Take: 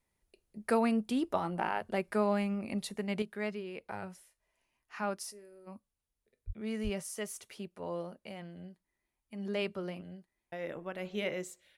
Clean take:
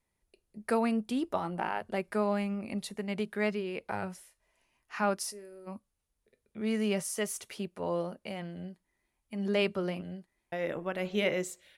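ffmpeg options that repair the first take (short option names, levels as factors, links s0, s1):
-filter_complex "[0:a]asplit=3[s0][s1][s2];[s0]afade=t=out:st=6.46:d=0.02[s3];[s1]highpass=f=140:w=0.5412,highpass=f=140:w=1.3066,afade=t=in:st=6.46:d=0.02,afade=t=out:st=6.58:d=0.02[s4];[s2]afade=t=in:st=6.58:d=0.02[s5];[s3][s4][s5]amix=inputs=3:normalize=0,asplit=3[s6][s7][s8];[s6]afade=t=out:st=6.83:d=0.02[s9];[s7]highpass=f=140:w=0.5412,highpass=f=140:w=1.3066,afade=t=in:st=6.83:d=0.02,afade=t=out:st=6.95:d=0.02[s10];[s8]afade=t=in:st=6.95:d=0.02[s11];[s9][s10][s11]amix=inputs=3:normalize=0,asetnsamples=n=441:p=0,asendcmd='3.22 volume volume 6dB',volume=1"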